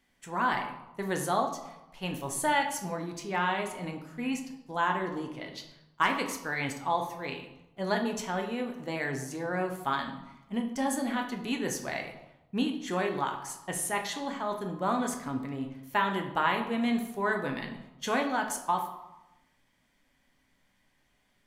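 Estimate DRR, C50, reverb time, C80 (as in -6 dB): 3.0 dB, 8.0 dB, 0.95 s, 10.5 dB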